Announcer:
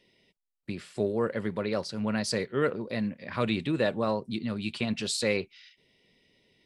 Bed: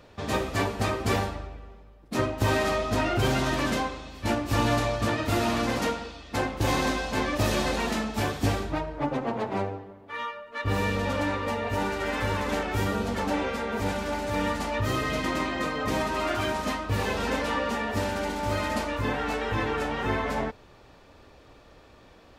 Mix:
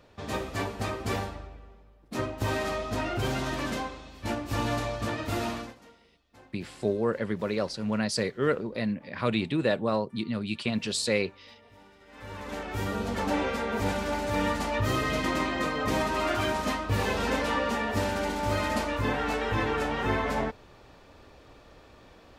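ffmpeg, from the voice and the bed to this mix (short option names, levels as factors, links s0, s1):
-filter_complex "[0:a]adelay=5850,volume=1.12[s0];[1:a]volume=12.6,afade=t=out:st=5.45:d=0.3:silence=0.0794328,afade=t=in:st=12.08:d=1.3:silence=0.0446684[s1];[s0][s1]amix=inputs=2:normalize=0"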